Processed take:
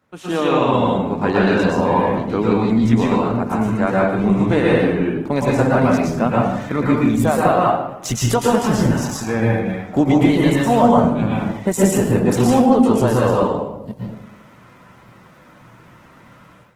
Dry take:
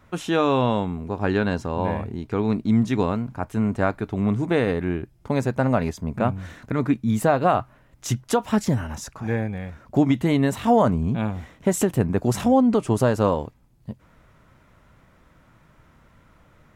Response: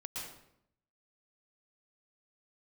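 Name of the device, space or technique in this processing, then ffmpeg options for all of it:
far-field microphone of a smart speaker: -filter_complex "[1:a]atrim=start_sample=2205[a];[0:a][a]afir=irnorm=-1:irlink=0,highpass=150,dynaudnorm=f=100:g=5:m=13.5dB,volume=-1.5dB" -ar 48000 -c:a libopus -b:a 16k

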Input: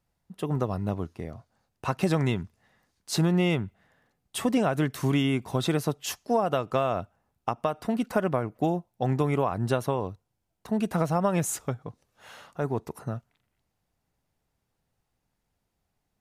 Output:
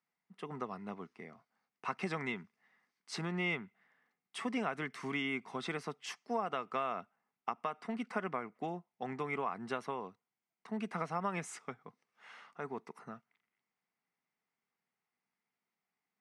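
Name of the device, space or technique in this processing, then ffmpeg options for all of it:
television speaker: -af "highpass=f=200:w=0.5412,highpass=f=200:w=1.3066,equalizer=f=310:t=q:w=4:g=-8,equalizer=f=570:t=q:w=4:g=-9,equalizer=f=1.2k:t=q:w=4:g=5,equalizer=f=2.1k:t=q:w=4:g=10,equalizer=f=3.9k:t=q:w=4:g=-4,equalizer=f=6.9k:t=q:w=4:g=-8,lowpass=f=7.9k:w=0.5412,lowpass=f=7.9k:w=1.3066,volume=-9dB"

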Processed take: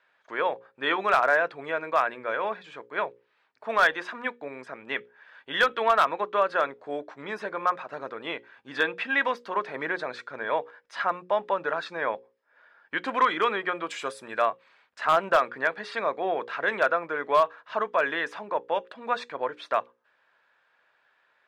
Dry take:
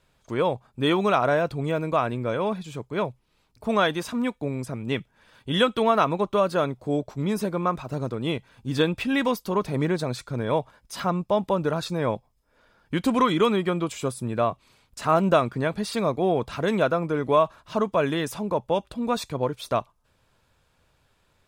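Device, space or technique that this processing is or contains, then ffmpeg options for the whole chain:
megaphone: -filter_complex "[0:a]asettb=1/sr,asplit=3[a][b][c];[a]atrim=end=13.904[d];[b]atrim=start=13.9:end=14.46,asetpts=PTS-STARTPTS,afade=t=in:d=0.004:c=qsin,afade=t=out:st=0.556:d=0.004:c=qsin,aemphasis=mode=production:type=75kf[e];[c]atrim=start=14.456[f];[d][e]acrossfade=d=0.004:c1=hsin:c2=qsin[g];[g][f]acrossfade=d=0.004:c1=qsin:c2=hsin,highpass=580,lowpass=2.9k,equalizer=f=1.7k:t=o:w=0.53:g=10,asoftclip=type=hard:threshold=-12.5dB,bandreject=f=60:t=h:w=6,bandreject=f=120:t=h:w=6,bandreject=f=180:t=h:w=6,bandreject=f=240:t=h:w=6,bandreject=f=300:t=h:w=6,bandreject=f=360:t=h:w=6,bandreject=f=420:t=h:w=6,bandreject=f=480:t=h:w=6,bandreject=f=540:t=h:w=6"

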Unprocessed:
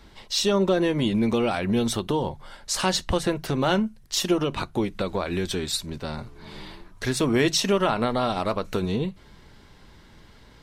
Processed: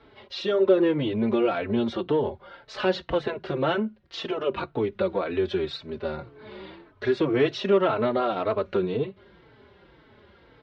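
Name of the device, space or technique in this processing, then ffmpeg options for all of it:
barber-pole flanger into a guitar amplifier: -filter_complex "[0:a]asplit=2[a][b];[b]adelay=4,afreqshift=-1.9[c];[a][c]amix=inputs=2:normalize=1,asoftclip=type=tanh:threshold=-16.5dB,highpass=79,equalizer=f=170:t=q:w=4:g=-4,equalizer=f=390:t=q:w=4:g=9,equalizer=f=570:t=q:w=4:g=7,equalizer=f=1.4k:t=q:w=4:g=4,lowpass=f=3.6k:w=0.5412,lowpass=f=3.6k:w=1.3066"

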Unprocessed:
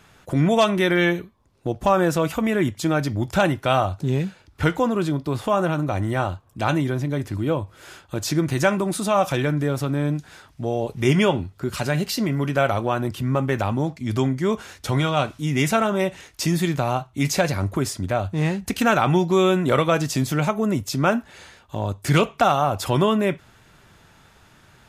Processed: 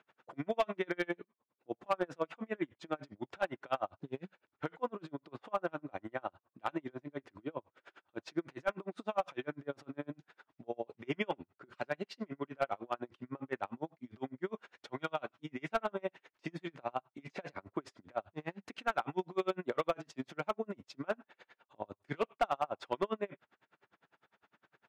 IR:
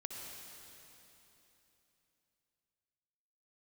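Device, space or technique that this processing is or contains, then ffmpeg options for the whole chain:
helicopter radio: -af "highpass=310,lowpass=2.5k,aeval=exprs='val(0)*pow(10,-37*(0.5-0.5*cos(2*PI*9.9*n/s))/20)':c=same,asoftclip=type=hard:threshold=-15dB,volume=-7.5dB"

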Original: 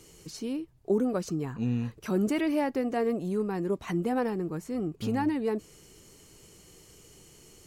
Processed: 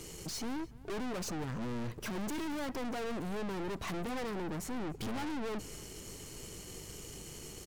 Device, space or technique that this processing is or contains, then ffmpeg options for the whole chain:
valve amplifier with mains hum: -filter_complex "[0:a]aeval=exprs='(tanh(200*val(0)+0.5)-tanh(0.5))/200':c=same,aeval=exprs='val(0)+0.000631*(sin(2*PI*50*n/s)+sin(2*PI*2*50*n/s)/2+sin(2*PI*3*50*n/s)/3+sin(2*PI*4*50*n/s)/4+sin(2*PI*5*50*n/s)/5)':c=same,asplit=2[a][b];[b]adelay=291.5,volume=-21dB,highshelf=f=4k:g=-6.56[c];[a][c]amix=inputs=2:normalize=0,volume=9dB"

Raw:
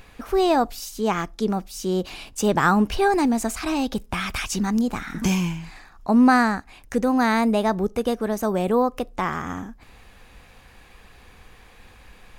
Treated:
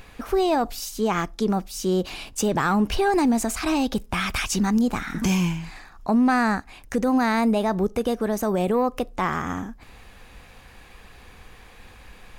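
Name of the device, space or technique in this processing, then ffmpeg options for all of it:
soft clipper into limiter: -af "asoftclip=type=tanh:threshold=-8.5dB,alimiter=limit=-15.5dB:level=0:latency=1:release=44,volume=2dB"

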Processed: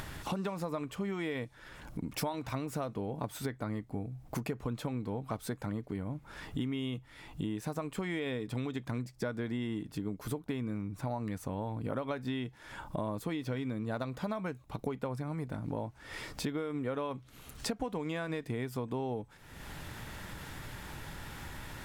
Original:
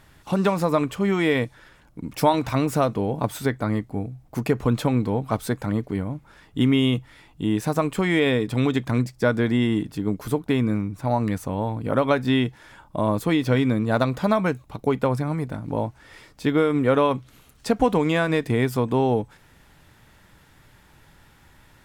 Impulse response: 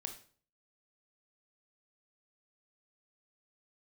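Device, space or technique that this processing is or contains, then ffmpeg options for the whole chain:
upward and downward compression: -af "acompressor=mode=upward:threshold=-37dB:ratio=2.5,acompressor=threshold=-37dB:ratio=5,volume=2dB"

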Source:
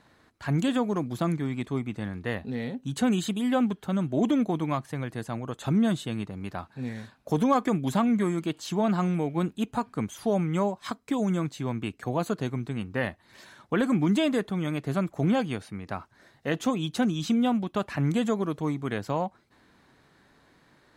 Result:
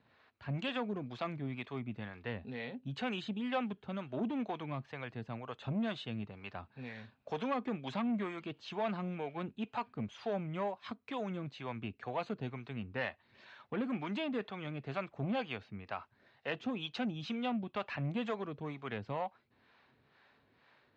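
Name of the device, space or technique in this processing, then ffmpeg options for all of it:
guitar amplifier with harmonic tremolo: -filter_complex "[0:a]acrossover=split=440[a][b];[a]aeval=exprs='val(0)*(1-0.7/2+0.7/2*cos(2*PI*2.1*n/s))':c=same[c];[b]aeval=exprs='val(0)*(1-0.7/2-0.7/2*cos(2*PI*2.1*n/s))':c=same[d];[c][d]amix=inputs=2:normalize=0,asoftclip=type=tanh:threshold=-22.5dB,highpass=87,equalizer=f=170:t=q:w=4:g=-8,equalizer=f=310:t=q:w=4:g=-8,equalizer=f=2.6k:t=q:w=4:g=6,lowpass=f=4.4k:w=0.5412,lowpass=f=4.4k:w=1.3066,volume=-3.5dB"

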